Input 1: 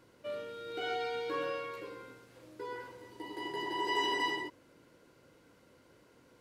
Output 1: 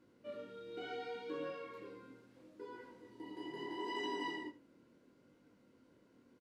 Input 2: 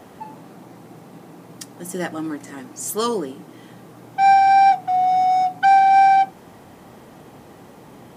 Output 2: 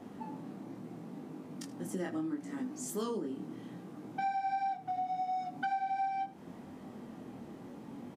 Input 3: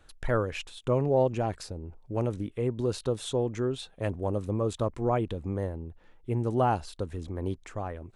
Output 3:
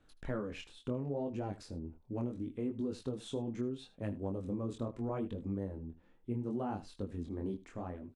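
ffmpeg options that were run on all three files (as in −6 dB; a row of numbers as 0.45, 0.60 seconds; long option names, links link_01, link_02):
-af "equalizer=frequency=240:width=1.3:gain=11.5,flanger=delay=19.5:depth=6.6:speed=0.73,acompressor=threshold=-26dB:ratio=6,highshelf=frequency=10000:gain=-8.5,aecho=1:1:78:0.133,volume=-7dB"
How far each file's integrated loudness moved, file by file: −8.5, −22.0, −9.5 LU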